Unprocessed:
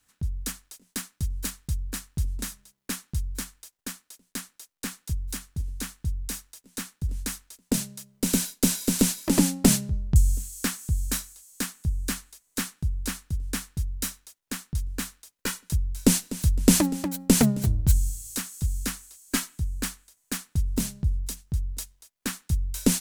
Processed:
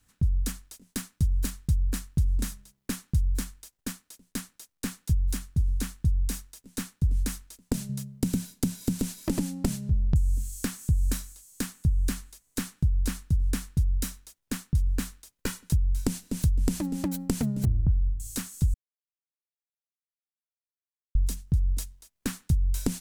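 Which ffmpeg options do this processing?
ffmpeg -i in.wav -filter_complex "[0:a]asettb=1/sr,asplit=3[link_01][link_02][link_03];[link_01]atrim=end=7.894[link_04];[link_02]atrim=start=7.89:end=9.01,asetpts=PTS-STARTPTS,afade=type=in:duration=0.004:curve=qsin,afade=type=out:start_time=1.116:duration=0.004:curve=qsin,equalizer=frequency=130:width=0.86:gain=11[link_05];[link_03]atrim=start=9.006[link_06];[link_04][link_05]acrossfade=duration=0.004:curve1=hsin:curve2=qsin[link_07];[link_07][link_06]acrossfade=duration=0.004:curve1=qsin:curve2=hsin,asettb=1/sr,asplit=3[link_08][link_09][link_10];[link_08]atrim=end=17.654[link_11];[link_09]atrim=start=17.65:end=18.2,asetpts=PTS-STARTPTS,afade=type=in:duration=0.004:curve=qsin,afade=type=out:start_time=0.546:duration=0.004:curve=qsin,lowpass=frequency=1300:width=0.5412,lowpass=frequency=1300:width=1.3066[link_12];[link_10]atrim=start=18.196[link_13];[link_11][link_12]acrossfade=duration=0.004:curve1=hsin:curve2=qsin[link_14];[link_14][link_13]acrossfade=duration=0.004:curve1=qsin:curve2=hsin,asplit=3[link_15][link_16][link_17];[link_15]atrim=end=18.74,asetpts=PTS-STARTPTS,afade=type=out:start_time=18.736:duration=0.004:curve=hsin[link_18];[link_16]atrim=start=18.74:end=21.15,asetpts=PTS-STARTPTS,volume=0[link_19];[link_17]atrim=start=21.15,asetpts=PTS-STARTPTS,afade=type=in:duration=0.004:curve=hsin[link_20];[link_18][link_19][link_20]concat=n=3:v=0:a=1,acompressor=threshold=-28dB:ratio=16,lowshelf=frequency=270:gain=11.5,volume=-1.5dB" out.wav

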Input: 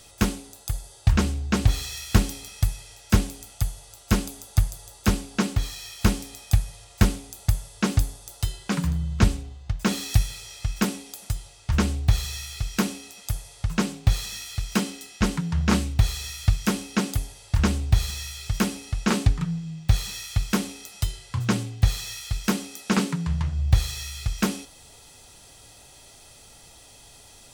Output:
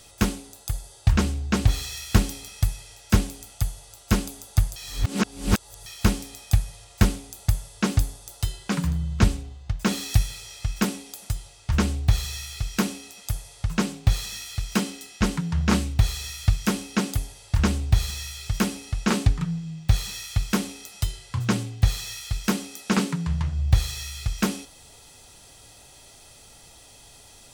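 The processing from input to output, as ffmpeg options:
ffmpeg -i in.wav -filter_complex "[0:a]asplit=3[link_01][link_02][link_03];[link_01]atrim=end=4.762[link_04];[link_02]atrim=start=4.758:end=5.862,asetpts=PTS-STARTPTS,areverse[link_05];[link_03]atrim=start=5.858[link_06];[link_04][link_05]acrossfade=duration=0.004:curve1=hsin:curve2=hsin[link_07];[link_07][link_06]acrossfade=duration=0.004:curve1=hsin:curve2=hsin" out.wav

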